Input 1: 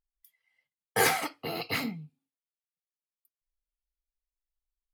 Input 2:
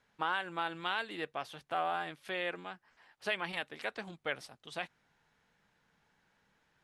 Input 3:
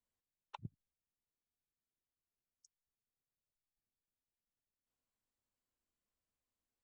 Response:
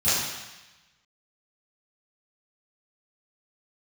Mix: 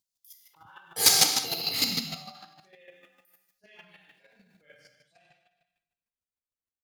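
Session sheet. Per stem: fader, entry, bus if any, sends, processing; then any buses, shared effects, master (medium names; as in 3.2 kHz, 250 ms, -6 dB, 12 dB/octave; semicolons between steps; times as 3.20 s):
0.0 dB, 0.00 s, send -16 dB, high-pass 120 Hz; resonant high shelf 2.9 kHz +14 dB, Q 1.5
-19.5 dB, 0.35 s, send -4.5 dB, expander on every frequency bin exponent 2
-3.5 dB, 0.00 s, no send, none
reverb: on, RT60 1.1 s, pre-delay 3 ms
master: transient shaper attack -7 dB, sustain +8 dB; square tremolo 6.6 Hz, depth 60%, duty 15%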